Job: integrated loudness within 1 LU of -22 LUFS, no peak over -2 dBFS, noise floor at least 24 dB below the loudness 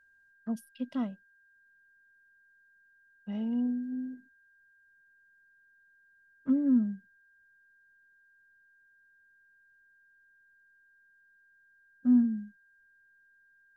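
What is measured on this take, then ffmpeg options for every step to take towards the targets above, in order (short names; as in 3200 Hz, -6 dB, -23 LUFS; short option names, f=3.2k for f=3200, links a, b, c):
steady tone 1600 Hz; tone level -62 dBFS; loudness -31.0 LUFS; peak -16.0 dBFS; loudness target -22.0 LUFS
-> -af "bandreject=f=1.6k:w=30"
-af "volume=9dB"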